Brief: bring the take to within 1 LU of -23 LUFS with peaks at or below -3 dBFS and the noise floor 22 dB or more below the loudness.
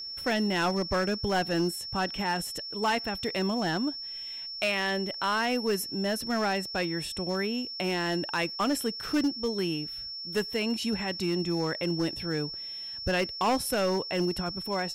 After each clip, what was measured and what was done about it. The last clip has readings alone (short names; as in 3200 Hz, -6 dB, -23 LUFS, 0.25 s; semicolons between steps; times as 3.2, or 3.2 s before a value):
clipped 1.2%; flat tops at -21.0 dBFS; steady tone 5400 Hz; tone level -36 dBFS; loudness -29.5 LUFS; peak -21.0 dBFS; loudness target -23.0 LUFS
-> clip repair -21 dBFS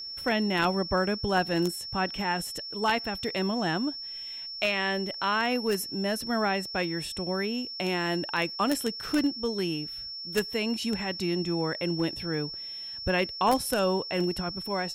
clipped 0.0%; steady tone 5400 Hz; tone level -36 dBFS
-> notch 5400 Hz, Q 30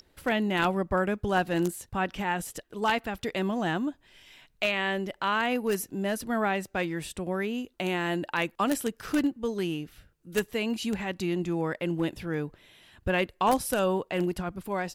steady tone none; loudness -29.5 LUFS; peak -11.5 dBFS; loudness target -23.0 LUFS
-> gain +6.5 dB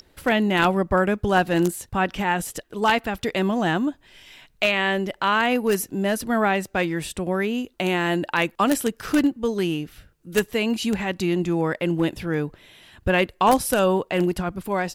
loudness -23.0 LUFS; peak -5.0 dBFS; noise floor -60 dBFS